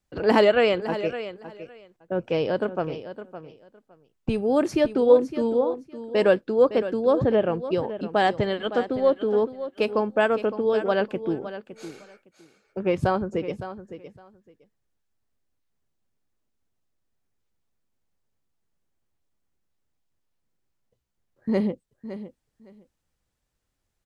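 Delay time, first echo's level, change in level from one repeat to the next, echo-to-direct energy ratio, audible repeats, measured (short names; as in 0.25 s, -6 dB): 0.561 s, -12.5 dB, -15.5 dB, -12.5 dB, 2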